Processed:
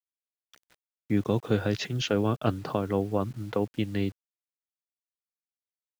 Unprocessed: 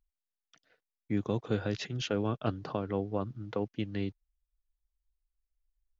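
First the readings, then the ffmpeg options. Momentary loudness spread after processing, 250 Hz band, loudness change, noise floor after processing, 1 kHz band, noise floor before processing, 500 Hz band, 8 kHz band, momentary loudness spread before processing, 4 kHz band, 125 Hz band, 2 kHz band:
5 LU, +5.5 dB, +5.5 dB, below −85 dBFS, +5.5 dB, below −85 dBFS, +5.5 dB, can't be measured, 5 LU, +5.5 dB, +5.5 dB, +5.5 dB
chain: -af "acrusher=bits=9:mix=0:aa=0.000001,volume=5.5dB"

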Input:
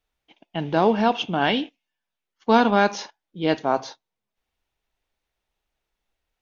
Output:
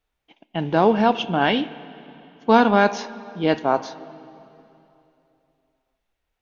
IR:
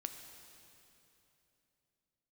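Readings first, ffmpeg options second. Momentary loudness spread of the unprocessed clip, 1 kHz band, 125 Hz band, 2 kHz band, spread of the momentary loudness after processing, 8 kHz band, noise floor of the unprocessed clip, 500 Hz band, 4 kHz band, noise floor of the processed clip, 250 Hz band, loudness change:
17 LU, +2.0 dB, +2.5 dB, +2.0 dB, 17 LU, can't be measured, −85 dBFS, +2.5 dB, 0.0 dB, −78 dBFS, +2.0 dB, +1.5 dB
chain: -filter_complex "[0:a]asplit=2[link_01][link_02];[1:a]atrim=start_sample=2205,lowpass=3500[link_03];[link_02][link_03]afir=irnorm=-1:irlink=0,volume=-4dB[link_04];[link_01][link_04]amix=inputs=2:normalize=0,volume=-1dB"

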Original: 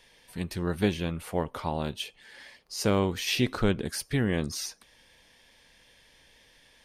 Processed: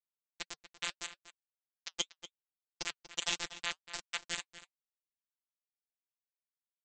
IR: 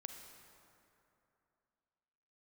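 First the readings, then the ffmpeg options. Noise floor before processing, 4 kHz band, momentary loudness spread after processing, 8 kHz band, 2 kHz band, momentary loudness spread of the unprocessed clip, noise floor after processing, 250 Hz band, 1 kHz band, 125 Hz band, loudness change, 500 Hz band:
−61 dBFS, −4.0 dB, 17 LU, −4.0 dB, −6.0 dB, 13 LU, below −85 dBFS, −29.0 dB, −12.5 dB, −32.0 dB, −10.0 dB, −24.0 dB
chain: -filter_complex "[0:a]afftfilt=real='re*pow(10,10/40*sin(2*PI*(0.81*log(max(b,1)*sr/1024/100)/log(2)-(0.86)*(pts-256)/sr)))':imag='im*pow(10,10/40*sin(2*PI*(0.81*log(max(b,1)*sr/1024/100)/log(2)-(0.86)*(pts-256)/sr)))':win_size=1024:overlap=0.75,acrossover=split=260 5900:gain=0.2 1 0.158[link_01][link_02][link_03];[link_01][link_02][link_03]amix=inputs=3:normalize=0,afftfilt=real='re*(1-between(b*sr/4096,170,1600))':imag='im*(1-between(b*sr/4096,170,1600))':win_size=4096:overlap=0.75,acrossover=split=400|1400|5400[link_04][link_05][link_06][link_07];[link_04]acompressor=threshold=-57dB:ratio=4[link_08];[link_06]acompressor=threshold=-40dB:ratio=4[link_09];[link_07]acompressor=threshold=-46dB:ratio=4[link_10];[link_08][link_05][link_09][link_10]amix=inputs=4:normalize=0,aresample=16000,acrusher=bits=4:mix=0:aa=0.000001,aresample=44100,afftfilt=real='hypot(re,im)*cos(PI*b)':imag='0':win_size=1024:overlap=0.75,flanger=delay=2.3:depth=4.1:regen=-58:speed=1.7:shape=triangular,asplit=2[link_11][link_12];[link_12]adelay=239.1,volume=-13dB,highshelf=frequency=4000:gain=-5.38[link_13];[link_11][link_13]amix=inputs=2:normalize=0,volume=12.5dB"

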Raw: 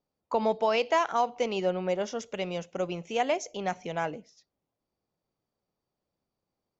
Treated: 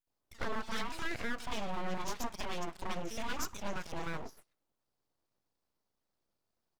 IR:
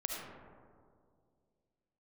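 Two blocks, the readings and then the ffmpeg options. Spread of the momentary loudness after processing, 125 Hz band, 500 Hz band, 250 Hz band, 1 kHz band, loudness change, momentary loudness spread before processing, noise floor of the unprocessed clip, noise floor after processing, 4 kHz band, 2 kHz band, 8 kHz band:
4 LU, −5.0 dB, −15.5 dB, −7.0 dB, −11.0 dB, −10.0 dB, 9 LU, below −85 dBFS, −85 dBFS, −5.5 dB, −4.5 dB, can't be measured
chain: -filter_complex "[0:a]alimiter=level_in=1.5dB:limit=-24dB:level=0:latency=1:release=122,volume=-1.5dB,acrossover=split=520|1800[link_01][link_02][link_03];[link_01]adelay=70[link_04];[link_02]adelay=100[link_05];[link_04][link_05][link_03]amix=inputs=3:normalize=0,aeval=exprs='abs(val(0))':channel_layout=same,volume=2.5dB"

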